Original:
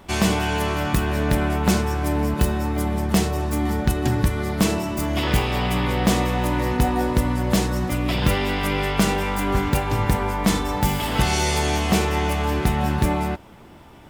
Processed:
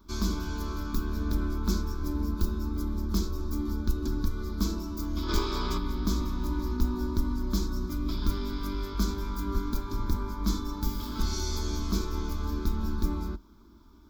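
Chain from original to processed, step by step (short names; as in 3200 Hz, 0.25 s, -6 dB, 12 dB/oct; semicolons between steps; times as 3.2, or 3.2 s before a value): octaver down 2 oct, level -1 dB; fixed phaser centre 510 Hz, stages 6; spectral gain 5.29–5.78, 310–9700 Hz +8 dB; fixed phaser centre 2800 Hz, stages 6; gain -6 dB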